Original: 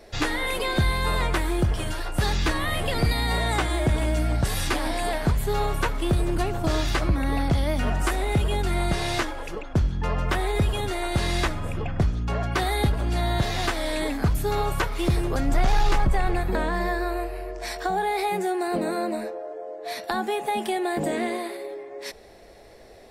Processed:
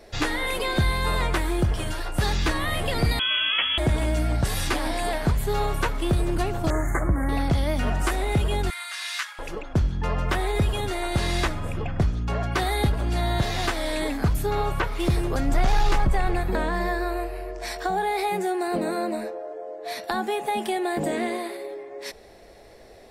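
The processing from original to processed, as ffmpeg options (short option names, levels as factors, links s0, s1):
-filter_complex "[0:a]asettb=1/sr,asplit=3[s0][s1][s2];[s0]atrim=end=3.194[s3];[s1]atrim=start=3.19:end=3.78,asetpts=PTS-STARTPTS,afade=t=in:d=0.004:c=qsin,afade=t=out:st=0.586:d=0.004:c=qsin,lowpass=f=2900:t=q:w=0.5098,lowpass=f=2900:t=q:w=0.6013,lowpass=f=2900:t=q:w=0.9,lowpass=f=2900:t=q:w=2.563,afreqshift=-3400[s4];[s2]atrim=start=3.776[s5];[s3][s4]acrossfade=d=0.004:c1=hsin:c2=qsin[s6];[s6][s5]acrossfade=d=0.004:c1=qsin:c2=hsin,asettb=1/sr,asplit=3[s7][s8][s9];[s7]atrim=end=6.704[s10];[s8]atrim=start=6.7:end=7.29,asetpts=PTS-STARTPTS,afade=t=in:d=0.004:c=qsin,afade=t=out:st=0.586:d=0.004:c=qsin,asuperstop=centerf=3800:order=20:qfactor=0.86[s11];[s9]atrim=start=7.286[s12];[s10][s11]acrossfade=d=0.004:c1=hsin:c2=qsin[s13];[s13][s12]acrossfade=d=0.004:c1=qsin:c2=hsin,asettb=1/sr,asplit=3[s14][s15][s16];[s14]atrim=end=8.704[s17];[s15]atrim=start=8.7:end=9.39,asetpts=PTS-STARTPTS,afade=t=in:d=0.004:c=qsin,afade=t=out:st=0.686:d=0.004:c=qsin,highpass=f=1300:w=0.5412,highpass=f=1300:w=1.3066[s18];[s16]atrim=start=9.386[s19];[s17][s18]acrossfade=d=0.004:c1=hsin:c2=qsin[s20];[s20][s19]acrossfade=d=0.004:c1=qsin:c2=hsin,asettb=1/sr,asplit=3[s21][s22][s23];[s21]atrim=end=14.464[s24];[s22]atrim=start=14.46:end=15,asetpts=PTS-STARTPTS,afade=t=in:d=0.004:c=qsin,afade=t=out:st=0.536:d=0.004:c=qsin,acrossover=split=3800[s25][s26];[s26]acompressor=threshold=0.00447:ratio=4:attack=1:release=60[s27];[s25][s27]amix=inputs=2:normalize=0[s28];[s23]atrim=start=14.996[s29];[s24][s28]acrossfade=d=0.004:c1=hsin:c2=qsin[s30];[s30][s29]acrossfade=d=0.004:c1=qsin:c2=hsin"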